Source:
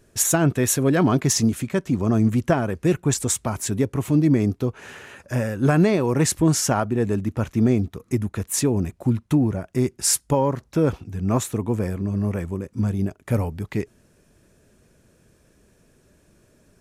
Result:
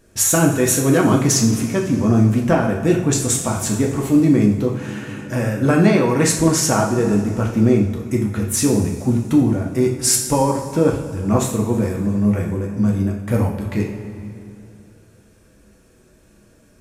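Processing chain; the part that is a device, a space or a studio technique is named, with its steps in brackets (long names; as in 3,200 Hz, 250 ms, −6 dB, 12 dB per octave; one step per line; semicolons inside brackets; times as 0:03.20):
0:05.85–0:06.61: parametric band 1,800 Hz +3.5 dB 1.6 octaves
compressed reverb return (on a send at −6 dB: convolution reverb RT60 2.1 s, pre-delay 43 ms + downward compressor, threshold −24 dBFS, peak gain reduction 11 dB)
on the sum: coupled-rooms reverb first 0.51 s, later 3.1 s, from −18 dB, DRR 0 dB
level +1.5 dB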